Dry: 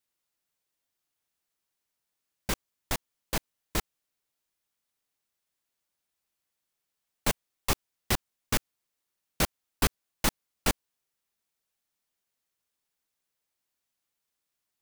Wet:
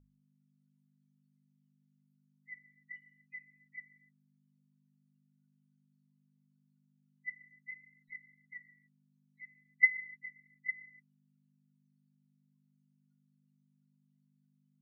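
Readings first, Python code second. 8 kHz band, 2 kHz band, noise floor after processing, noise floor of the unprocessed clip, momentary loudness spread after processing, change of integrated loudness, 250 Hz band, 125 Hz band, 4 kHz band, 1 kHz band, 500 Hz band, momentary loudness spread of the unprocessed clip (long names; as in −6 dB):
below −40 dB, +2.5 dB, −74 dBFS, −84 dBFS, 24 LU, −1.5 dB, below −25 dB, below −25 dB, below −40 dB, below −40 dB, below −40 dB, 5 LU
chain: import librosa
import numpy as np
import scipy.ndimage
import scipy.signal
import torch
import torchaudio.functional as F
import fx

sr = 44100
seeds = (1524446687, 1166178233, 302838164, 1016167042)

y = fx.band_swap(x, sr, width_hz=2000)
y = fx.level_steps(y, sr, step_db=22)
y = fx.spec_topn(y, sr, count=4)
y = y + 0.83 * np.pad(y, (int(2.1 * sr / 1000.0), 0))[:len(y)]
y = fx.wow_flutter(y, sr, seeds[0], rate_hz=2.1, depth_cents=27.0)
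y = fx.ripple_eq(y, sr, per_octave=1.9, db=17)
y = fx.rev_gated(y, sr, seeds[1], gate_ms=310, shape='falling', drr_db=10.0)
y = fx.add_hum(y, sr, base_hz=50, snr_db=20)
y = fx.hum_notches(y, sr, base_hz=50, count=2)
y = y * librosa.db_to_amplitude(-5.0)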